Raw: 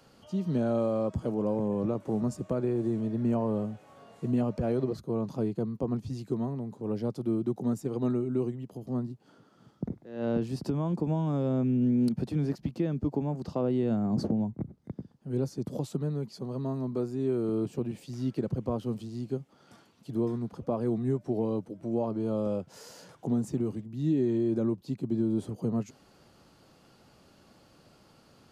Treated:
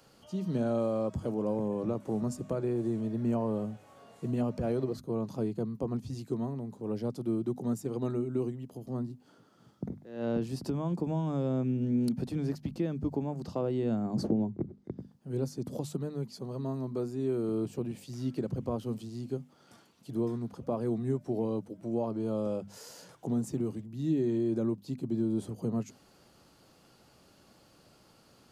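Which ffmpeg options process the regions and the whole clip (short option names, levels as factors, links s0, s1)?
-filter_complex "[0:a]asettb=1/sr,asplit=3[s0][s1][s2];[s0]atrim=end=14.304[s3];[s1]atrim=start=14.3:end=14.98,asetpts=PTS-STARTPTS,afade=t=in:d=0.004:c=qsin,afade=t=out:st=0.676:d=0.004:c=qsin,lowpass=6200,equalizer=f=370:t=o:w=0.59:g=10.5[s4];[s2]atrim=start=14.976[s5];[s3][s4]acrossfade=d=0.004:c1=hsin:c2=qsin[s6];[s6][s5]acrossfade=d=0.004:c1=qsin:c2=hsin,highshelf=f=5900:g=6,bandreject=f=50:t=h:w=6,bandreject=f=100:t=h:w=6,bandreject=f=150:t=h:w=6,bandreject=f=200:t=h:w=6,bandreject=f=250:t=h:w=6,volume=0.794"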